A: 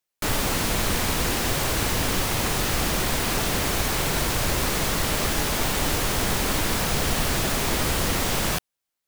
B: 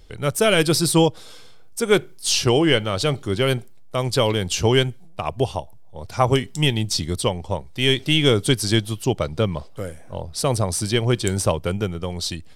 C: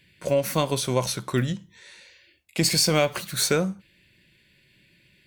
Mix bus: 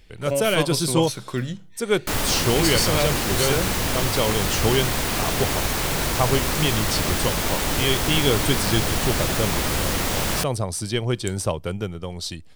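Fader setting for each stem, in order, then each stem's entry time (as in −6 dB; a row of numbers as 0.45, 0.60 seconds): +0.5, −4.0, −2.5 decibels; 1.85, 0.00, 0.00 seconds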